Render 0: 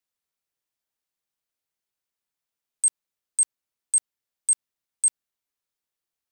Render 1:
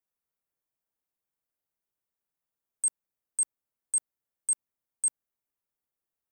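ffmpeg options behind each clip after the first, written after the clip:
ffmpeg -i in.wav -af "equalizer=frequency=4200:width_type=o:width=2.1:gain=-12.5" out.wav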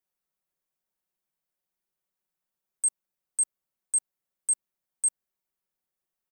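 ffmpeg -i in.wav -af "aecho=1:1:5.4:0.65" out.wav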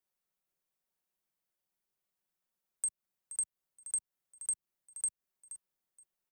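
ffmpeg -i in.wav -filter_complex "[0:a]acrossover=split=140[link_01][link_02];[link_02]acompressor=threshold=-31dB:ratio=5[link_03];[link_01][link_03]amix=inputs=2:normalize=0,aecho=1:1:474|948:0.224|0.0448,volume=-1.5dB" out.wav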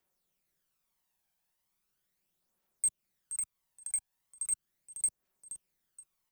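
ffmpeg -i in.wav -af "asoftclip=type=tanh:threshold=-32.5dB,aphaser=in_gain=1:out_gain=1:delay=1.3:decay=0.49:speed=0.38:type=triangular,volume=5.5dB" out.wav

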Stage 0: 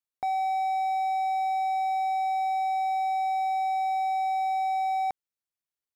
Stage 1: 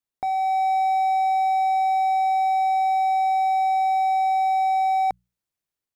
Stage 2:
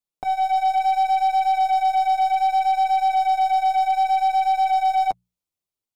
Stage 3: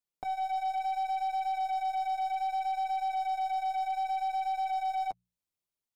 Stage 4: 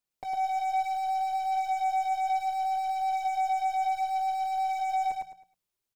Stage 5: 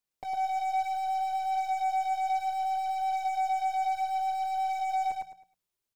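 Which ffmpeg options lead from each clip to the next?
ffmpeg -i in.wav -af "bandreject=frequency=60:width_type=h:width=6,bandreject=frequency=120:width_type=h:width=6,bandreject=frequency=180:width_type=h:width=6,dynaudnorm=framelen=180:gausssize=5:maxgain=3.5dB,lowshelf=frequency=450:gain=7,volume=1dB" out.wav
ffmpeg -i in.wav -af "equalizer=frequency=1700:width_type=o:width=0.48:gain=-10,flanger=delay=4.6:depth=8.4:regen=-12:speed=0.64:shape=triangular,aeval=exprs='0.126*(cos(1*acos(clip(val(0)/0.126,-1,1)))-cos(1*PI/2))+0.00355*(cos(6*acos(clip(val(0)/0.126,-1,1)))-cos(6*PI/2))+0.00562*(cos(7*acos(clip(val(0)/0.126,-1,1)))-cos(7*PI/2))':channel_layout=same,volume=5dB" out.wav
ffmpeg -i in.wav -af "alimiter=limit=-23.5dB:level=0:latency=1:release=324,volume=-3.5dB" out.wav
ffmpeg -i in.wav -af "asoftclip=type=hard:threshold=-33.5dB,aecho=1:1:106|212|318|424:0.708|0.205|0.0595|0.0173,aphaser=in_gain=1:out_gain=1:delay=2.8:decay=0.21:speed=1.3:type=sinusoidal,volume=2.5dB" out.wav
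ffmpeg -i in.wav -af "aeval=exprs='0.0708*(cos(1*acos(clip(val(0)/0.0708,-1,1)))-cos(1*PI/2))+0.00126*(cos(6*acos(clip(val(0)/0.0708,-1,1)))-cos(6*PI/2))':channel_layout=same,volume=-1dB" out.wav

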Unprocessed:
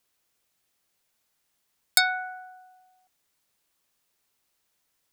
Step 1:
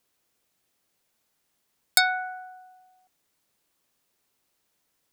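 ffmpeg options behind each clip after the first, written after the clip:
ffmpeg -i in.wav -af "equalizer=frequency=280:width_type=o:width=2.8:gain=5" out.wav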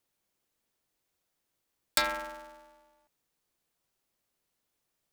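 ffmpeg -i in.wav -af "lowshelf=frequency=410:gain=4.5,aeval=exprs='val(0)*sgn(sin(2*PI*140*n/s))':channel_layout=same,volume=-7.5dB" out.wav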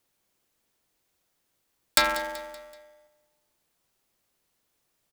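ffmpeg -i in.wav -af "aecho=1:1:190|380|570|760:0.158|0.0745|0.035|0.0165,volume=6dB" out.wav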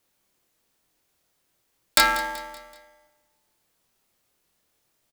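ffmpeg -i in.wav -filter_complex "[0:a]asplit=2[link_01][link_02];[link_02]adelay=26,volume=-3dB[link_03];[link_01][link_03]amix=inputs=2:normalize=0,volume=1.5dB" out.wav

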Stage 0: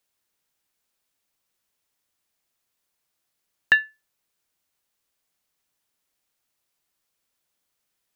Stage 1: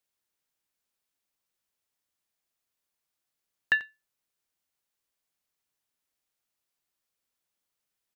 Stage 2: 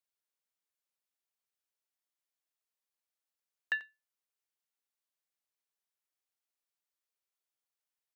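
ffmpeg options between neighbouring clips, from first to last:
ffmpeg -i in.wav -af "aecho=1:1:90:0.126,volume=-7dB" out.wav
ffmpeg -i in.wav -af "highpass=380,volume=-8.5dB" out.wav

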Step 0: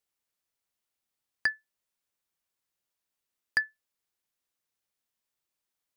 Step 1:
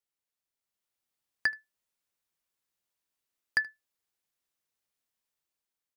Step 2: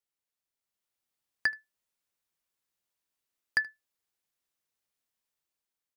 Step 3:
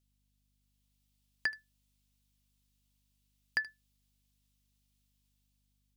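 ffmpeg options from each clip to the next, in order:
ffmpeg -i in.wav -af "dynaudnorm=framelen=220:gausssize=7:maxgain=6dB,aecho=1:1:77:0.0668,volume=-6.5dB" out.wav
ffmpeg -i in.wav -af anull out.wav
ffmpeg -i in.wav -filter_complex "[0:a]highshelf=frequency=2300:width_type=q:width=1.5:gain=8,acrossover=split=3400[link_01][link_02];[link_02]acompressor=threshold=-40dB:ratio=4:attack=1:release=60[link_03];[link_01][link_03]amix=inputs=2:normalize=0,aeval=exprs='val(0)+0.000224*(sin(2*PI*50*n/s)+sin(2*PI*2*50*n/s)/2+sin(2*PI*3*50*n/s)/3+sin(2*PI*4*50*n/s)/4+sin(2*PI*5*50*n/s)/5)':channel_layout=same,volume=-3dB" out.wav

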